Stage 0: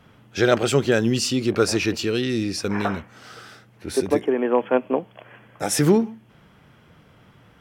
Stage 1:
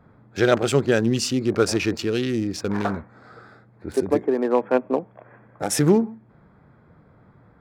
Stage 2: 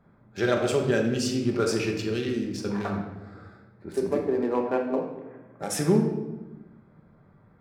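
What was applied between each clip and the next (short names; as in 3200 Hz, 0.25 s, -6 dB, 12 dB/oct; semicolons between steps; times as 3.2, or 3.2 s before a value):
Wiener smoothing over 15 samples
shoebox room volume 550 m³, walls mixed, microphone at 1.2 m; gain -7.5 dB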